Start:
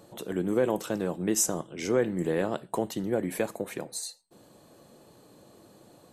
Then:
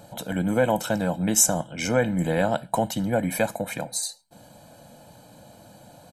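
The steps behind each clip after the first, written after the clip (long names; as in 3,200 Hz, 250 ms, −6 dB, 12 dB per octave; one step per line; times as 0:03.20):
comb filter 1.3 ms, depth 89%
level +5 dB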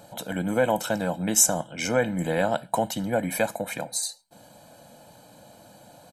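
low-shelf EQ 190 Hz −7 dB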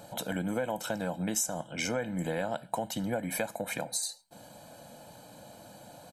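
downward compressor 4 to 1, threshold −30 dBFS, peak gain reduction 13.5 dB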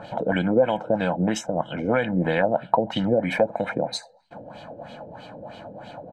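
auto-filter low-pass sine 3.1 Hz 410–3,300 Hz
level +9 dB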